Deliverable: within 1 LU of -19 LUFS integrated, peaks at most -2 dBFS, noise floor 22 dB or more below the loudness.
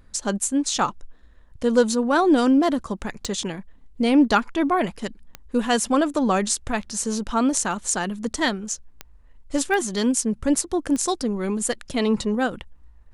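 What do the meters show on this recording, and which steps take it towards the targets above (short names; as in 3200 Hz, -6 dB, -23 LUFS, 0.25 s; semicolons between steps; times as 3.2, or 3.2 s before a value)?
clicks 5; loudness -22.5 LUFS; peak -3.0 dBFS; loudness target -19.0 LUFS
-> de-click; gain +3.5 dB; limiter -2 dBFS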